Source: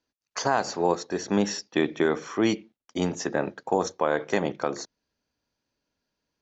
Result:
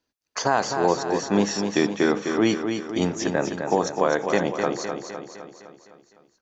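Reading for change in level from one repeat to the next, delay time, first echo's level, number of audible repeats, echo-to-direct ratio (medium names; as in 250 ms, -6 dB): -5.0 dB, 255 ms, -6.5 dB, 6, -5.0 dB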